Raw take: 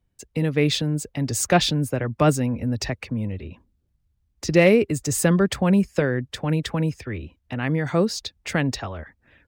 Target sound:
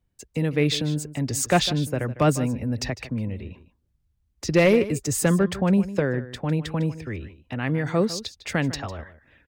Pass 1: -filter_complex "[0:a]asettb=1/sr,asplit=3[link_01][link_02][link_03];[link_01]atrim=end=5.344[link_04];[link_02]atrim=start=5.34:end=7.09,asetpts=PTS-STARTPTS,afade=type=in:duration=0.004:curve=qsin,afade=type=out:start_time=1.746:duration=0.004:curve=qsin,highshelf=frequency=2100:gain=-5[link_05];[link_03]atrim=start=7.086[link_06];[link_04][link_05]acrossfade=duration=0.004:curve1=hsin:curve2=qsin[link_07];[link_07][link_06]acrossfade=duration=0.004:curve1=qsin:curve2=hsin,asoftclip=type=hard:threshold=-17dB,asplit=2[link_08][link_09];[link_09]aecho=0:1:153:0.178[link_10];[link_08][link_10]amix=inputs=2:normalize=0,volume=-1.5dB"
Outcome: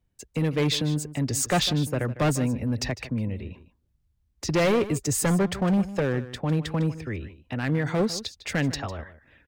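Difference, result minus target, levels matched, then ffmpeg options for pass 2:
hard clipping: distortion +15 dB
-filter_complex "[0:a]asettb=1/sr,asplit=3[link_01][link_02][link_03];[link_01]atrim=end=5.344[link_04];[link_02]atrim=start=5.34:end=7.09,asetpts=PTS-STARTPTS,afade=type=in:duration=0.004:curve=qsin,afade=type=out:start_time=1.746:duration=0.004:curve=qsin,highshelf=frequency=2100:gain=-5[link_05];[link_03]atrim=start=7.086[link_06];[link_04][link_05]acrossfade=duration=0.004:curve1=hsin:curve2=qsin[link_07];[link_07][link_06]acrossfade=duration=0.004:curve1=qsin:curve2=hsin,asoftclip=type=hard:threshold=-9dB,asplit=2[link_08][link_09];[link_09]aecho=0:1:153:0.178[link_10];[link_08][link_10]amix=inputs=2:normalize=0,volume=-1.5dB"

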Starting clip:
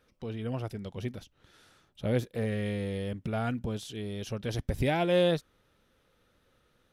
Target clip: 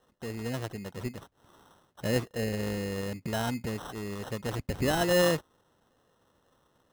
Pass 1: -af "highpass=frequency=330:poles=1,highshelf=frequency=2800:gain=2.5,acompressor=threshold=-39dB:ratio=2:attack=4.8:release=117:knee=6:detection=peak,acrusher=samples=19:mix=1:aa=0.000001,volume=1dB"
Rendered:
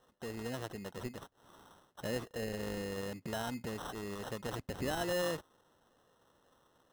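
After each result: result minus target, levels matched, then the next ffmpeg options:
downward compressor: peak gain reduction +9.5 dB; 125 Hz band −2.0 dB
-af "highpass=frequency=330:poles=1,highshelf=frequency=2800:gain=2.5,acrusher=samples=19:mix=1:aa=0.000001,volume=1dB"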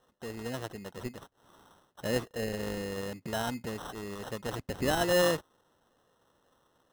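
125 Hz band −4.0 dB
-af "highpass=frequency=110:poles=1,highshelf=frequency=2800:gain=2.5,acrusher=samples=19:mix=1:aa=0.000001,volume=1dB"

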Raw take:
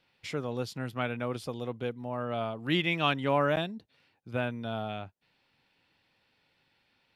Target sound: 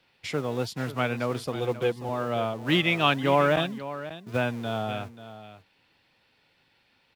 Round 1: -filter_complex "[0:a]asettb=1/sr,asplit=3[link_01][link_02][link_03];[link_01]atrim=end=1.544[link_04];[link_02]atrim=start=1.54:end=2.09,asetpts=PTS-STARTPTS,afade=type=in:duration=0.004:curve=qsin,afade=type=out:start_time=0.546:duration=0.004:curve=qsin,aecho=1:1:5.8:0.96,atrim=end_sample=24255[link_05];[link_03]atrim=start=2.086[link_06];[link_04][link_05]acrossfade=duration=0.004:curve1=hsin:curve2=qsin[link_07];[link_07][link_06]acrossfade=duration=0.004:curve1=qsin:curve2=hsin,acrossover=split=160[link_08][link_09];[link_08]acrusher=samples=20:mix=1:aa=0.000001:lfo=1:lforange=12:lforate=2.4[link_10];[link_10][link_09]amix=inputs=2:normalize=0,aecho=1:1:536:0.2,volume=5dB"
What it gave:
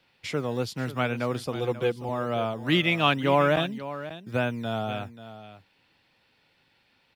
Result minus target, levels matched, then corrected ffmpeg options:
sample-and-hold swept by an LFO: distortion −12 dB
-filter_complex "[0:a]asettb=1/sr,asplit=3[link_01][link_02][link_03];[link_01]atrim=end=1.544[link_04];[link_02]atrim=start=1.54:end=2.09,asetpts=PTS-STARTPTS,afade=type=in:duration=0.004:curve=qsin,afade=type=out:start_time=0.546:duration=0.004:curve=qsin,aecho=1:1:5.8:0.96,atrim=end_sample=24255[link_05];[link_03]atrim=start=2.086[link_06];[link_04][link_05]acrossfade=duration=0.004:curve1=hsin:curve2=qsin[link_07];[link_07][link_06]acrossfade=duration=0.004:curve1=qsin:curve2=hsin,acrossover=split=160[link_08][link_09];[link_08]acrusher=samples=64:mix=1:aa=0.000001:lfo=1:lforange=38.4:lforate=2.4[link_10];[link_10][link_09]amix=inputs=2:normalize=0,aecho=1:1:536:0.2,volume=5dB"

